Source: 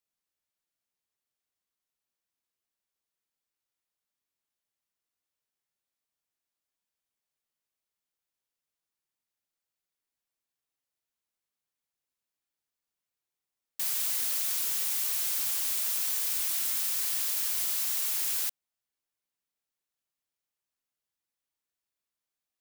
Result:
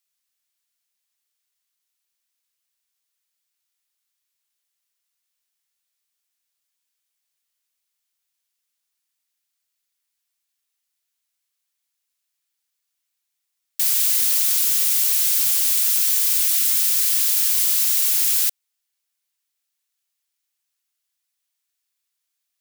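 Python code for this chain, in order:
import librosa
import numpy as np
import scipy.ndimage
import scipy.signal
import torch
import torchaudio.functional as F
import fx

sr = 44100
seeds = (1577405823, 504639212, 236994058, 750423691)

y = fx.tilt_shelf(x, sr, db=-9.0, hz=1100.0)
y = y * librosa.db_to_amplitude(2.5)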